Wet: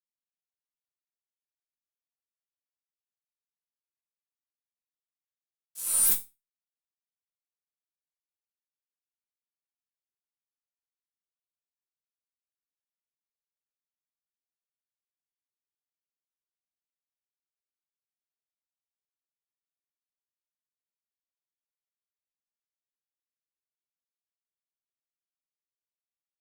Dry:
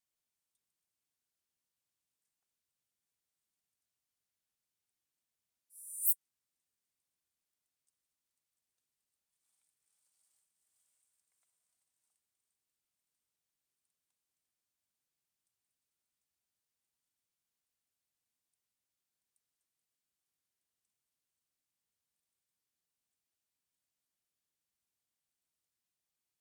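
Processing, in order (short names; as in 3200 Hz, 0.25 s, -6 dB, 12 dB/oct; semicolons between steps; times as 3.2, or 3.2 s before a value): added harmonics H 2 -13 dB, 8 -34 dB, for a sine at -11.5 dBFS; fuzz box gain 47 dB, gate -50 dBFS; resonator bank F3 major, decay 0.24 s; gain +8 dB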